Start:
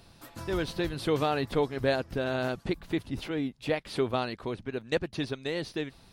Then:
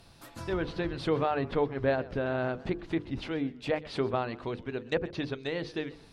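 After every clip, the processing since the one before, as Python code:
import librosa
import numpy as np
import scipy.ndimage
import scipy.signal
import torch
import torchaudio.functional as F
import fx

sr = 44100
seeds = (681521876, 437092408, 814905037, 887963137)

y = fx.hum_notches(x, sr, base_hz=50, count=10)
y = fx.env_lowpass_down(y, sr, base_hz=2100.0, full_db=-26.5)
y = fx.echo_warbled(y, sr, ms=129, feedback_pct=36, rate_hz=2.8, cents=147, wet_db=-20)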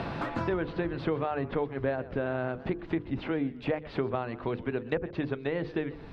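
y = scipy.signal.sosfilt(scipy.signal.butter(2, 2500.0, 'lowpass', fs=sr, output='sos'), x)
y = fx.band_squash(y, sr, depth_pct=100)
y = y * librosa.db_to_amplitude(-1.0)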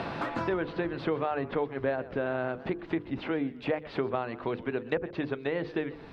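y = fx.low_shelf(x, sr, hz=140.0, db=-10.5)
y = y * librosa.db_to_amplitude(1.5)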